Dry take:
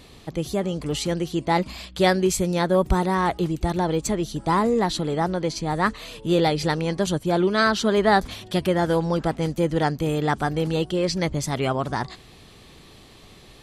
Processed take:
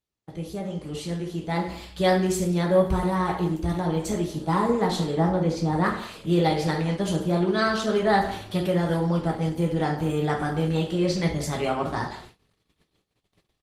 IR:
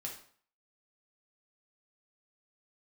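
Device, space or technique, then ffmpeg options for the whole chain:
speakerphone in a meeting room: -filter_complex "[0:a]asettb=1/sr,asplit=3[a][b][c];[a]atrim=end=5.184[d];[b]atrim=start=5.18:end=5.84,asetpts=PTS-STARTPTS,afade=t=in:d=0.004:c=qsin,afade=t=out:st=0.656:d=0.004:c=qsin,tiltshelf=f=1.1k:g=4[e];[c]atrim=start=5.836[f];[d][e]acrossfade=d=0.004:c1=hsin:c2=qsin[g];[g][f]acrossfade=d=0.004:c1=qsin:c2=hsin[h];[1:a]atrim=start_sample=2205[i];[h][i]afir=irnorm=-1:irlink=0,asplit=2[j][k];[k]adelay=170,highpass=300,lowpass=3.4k,asoftclip=type=hard:threshold=-16.5dB,volume=-15dB[l];[j][l]amix=inputs=2:normalize=0,dynaudnorm=f=980:g=3:m=7.5dB,agate=range=-34dB:threshold=-38dB:ratio=16:detection=peak,volume=-6dB" -ar 48000 -c:a libopus -b:a 20k

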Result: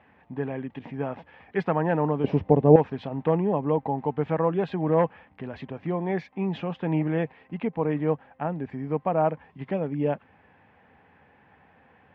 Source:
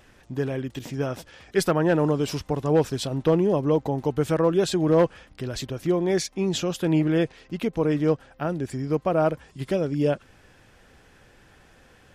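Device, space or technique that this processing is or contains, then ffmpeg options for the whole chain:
bass cabinet: -filter_complex "[0:a]highpass=f=89:w=0.5412,highpass=f=89:w=1.3066,equalizer=f=120:t=q:w=4:g=-10,equalizer=f=350:t=q:w=4:g=-9,equalizer=f=560:t=q:w=4:g=-4,equalizer=f=850:t=q:w=4:g=6,equalizer=f=1.4k:t=q:w=4:g=-7,lowpass=f=2.3k:w=0.5412,lowpass=f=2.3k:w=1.3066,asettb=1/sr,asplit=3[a][b][c];[a]atrim=end=2.244[d];[b]atrim=start=2.24:end=2.76,asetpts=PTS-STARTPTS,afade=t=in:d=0.004:c=qsin,afade=t=out:st=0.516:d=0.004:c=qsin,lowshelf=f=760:t=q:w=1.5:g=9.5[e];[c]atrim=start=2.756[f];[d][e]acrossfade=d=0.004:c1=hsin:c2=qsin[g];[g][f]acrossfade=d=0.004:c1=qsin:c2=hsin"

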